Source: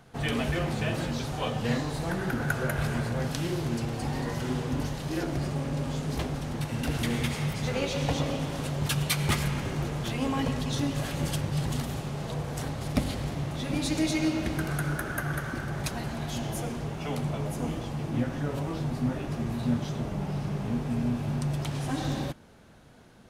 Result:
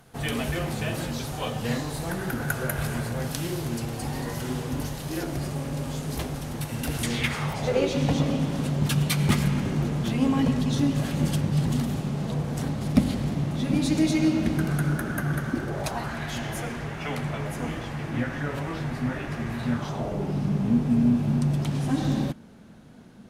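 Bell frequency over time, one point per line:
bell +10.5 dB 1.1 oct
6.98 s 13000 Hz
7.29 s 1700 Hz
8.05 s 210 Hz
15.47 s 210 Hz
16.19 s 1800 Hz
19.7 s 1800 Hz
20.43 s 210 Hz

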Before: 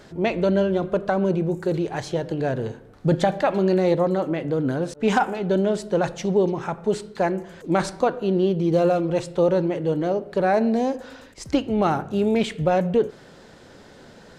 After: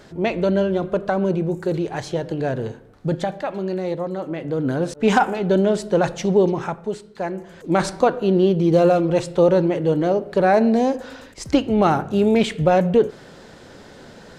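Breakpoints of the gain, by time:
2.66 s +1 dB
3.43 s -5.5 dB
4.1 s -5.5 dB
4.84 s +3.5 dB
6.62 s +3.5 dB
7.02 s -7 dB
7.89 s +4 dB

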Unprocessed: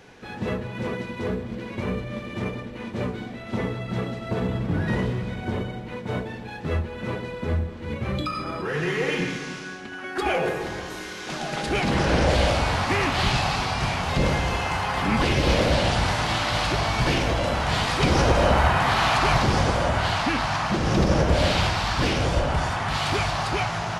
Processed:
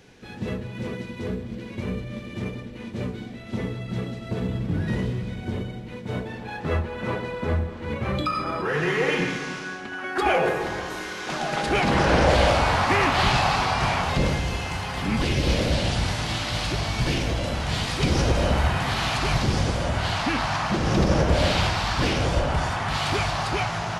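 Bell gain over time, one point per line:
bell 1000 Hz 2.2 oct
6.01 s -7.5 dB
6.52 s +4.5 dB
13.99 s +4.5 dB
14.42 s -7.5 dB
19.77 s -7.5 dB
20.38 s -0.5 dB

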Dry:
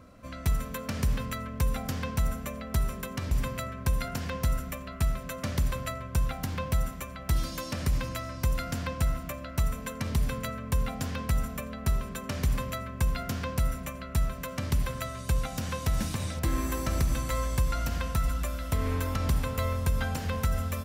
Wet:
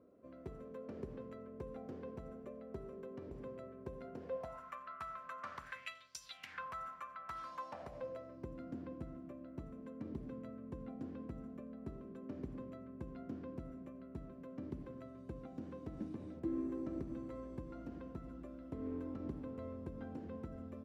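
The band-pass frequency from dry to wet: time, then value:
band-pass, Q 4
4.2 s 390 Hz
4.7 s 1200 Hz
5.59 s 1200 Hz
6.19 s 5900 Hz
6.65 s 1200 Hz
7.41 s 1200 Hz
8.51 s 320 Hz

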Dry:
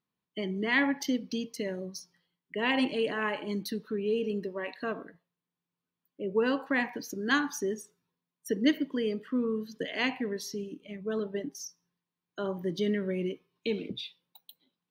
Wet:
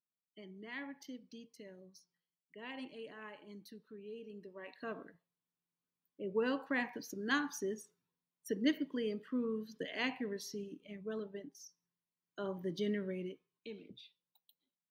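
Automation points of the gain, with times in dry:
4.29 s -19 dB
5.02 s -7 dB
10.98 s -7 dB
11.52 s -14 dB
12.43 s -7 dB
13 s -7 dB
13.71 s -17 dB

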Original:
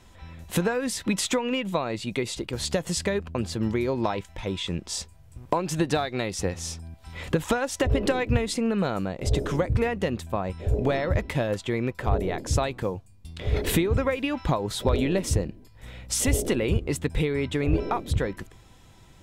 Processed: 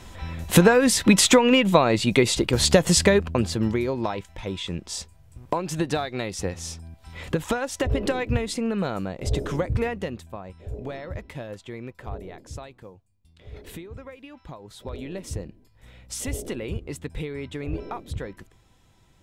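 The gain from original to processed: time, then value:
3.03 s +9.5 dB
3.99 s -1 dB
9.87 s -1 dB
10.4 s -10 dB
12.02 s -10 dB
12.94 s -16.5 dB
14.5 s -16.5 dB
15.45 s -7 dB

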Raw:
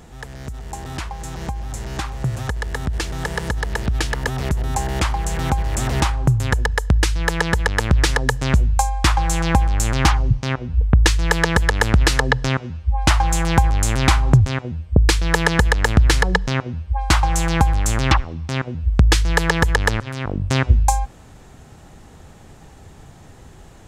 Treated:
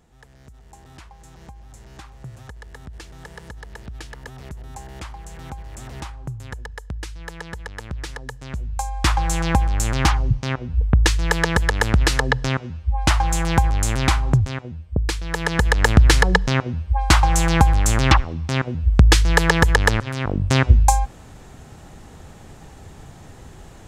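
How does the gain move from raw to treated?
8.5 s -15 dB
9.08 s -2 dB
13.89 s -2 dB
15.27 s -9 dB
15.83 s +1.5 dB

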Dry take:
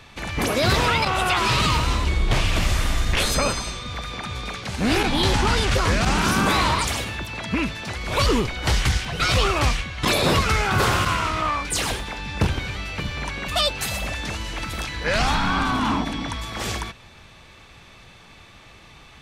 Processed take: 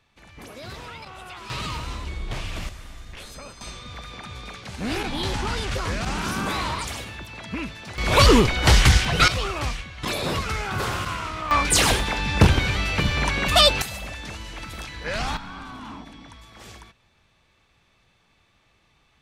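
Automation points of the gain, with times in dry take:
-19 dB
from 1.5 s -10.5 dB
from 2.69 s -19 dB
from 3.61 s -7 dB
from 7.98 s +5.5 dB
from 9.28 s -7 dB
from 11.51 s +6 dB
from 13.82 s -6.5 dB
from 15.37 s -16 dB

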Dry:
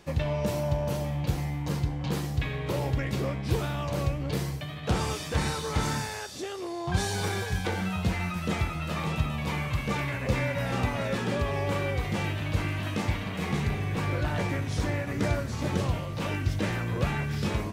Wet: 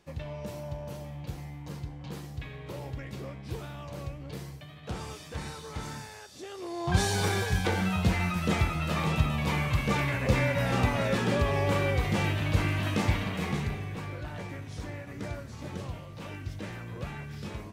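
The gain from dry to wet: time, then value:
6.29 s -10 dB
6.91 s +2 dB
13.22 s +2 dB
14.16 s -10 dB

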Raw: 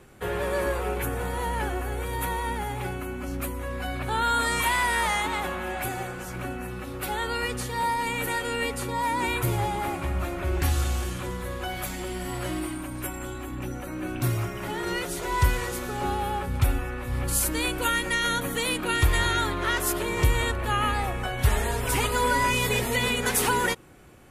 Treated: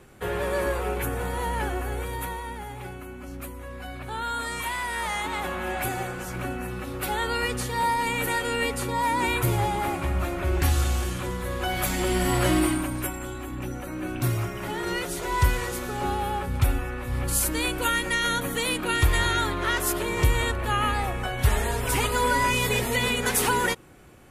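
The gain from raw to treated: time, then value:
1.97 s +0.5 dB
2.47 s -6 dB
4.87 s -6 dB
5.69 s +2 dB
11.41 s +2 dB
12.16 s +9 dB
12.69 s +9 dB
13.2 s +0.5 dB

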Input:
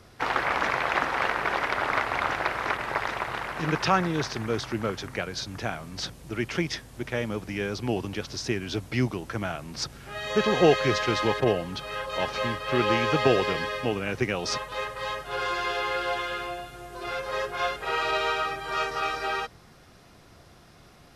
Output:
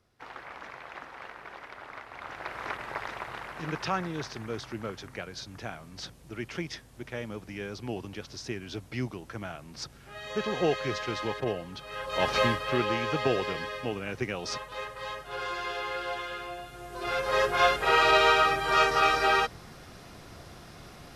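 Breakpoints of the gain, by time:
2.08 s -18 dB
2.63 s -7.5 dB
11.85 s -7.5 dB
12.38 s +5 dB
12.9 s -5.5 dB
16.44 s -5.5 dB
17.47 s +5.5 dB

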